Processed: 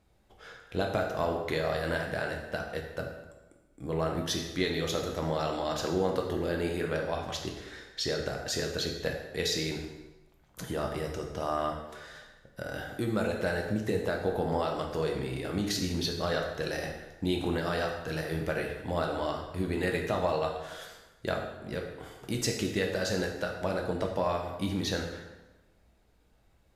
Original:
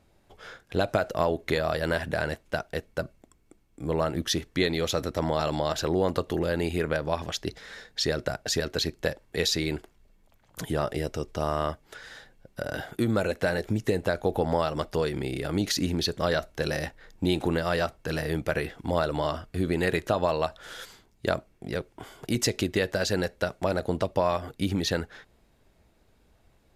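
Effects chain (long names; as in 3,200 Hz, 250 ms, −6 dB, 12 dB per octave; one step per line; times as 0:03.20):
dense smooth reverb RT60 1.1 s, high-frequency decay 0.8×, DRR 1 dB
level −6 dB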